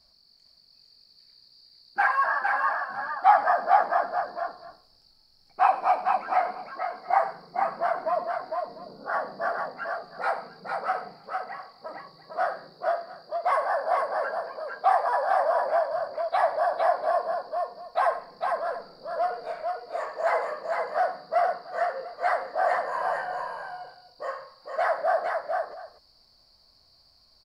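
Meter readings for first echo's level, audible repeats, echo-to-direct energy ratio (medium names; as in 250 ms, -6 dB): -15.0 dB, 3, -3.5 dB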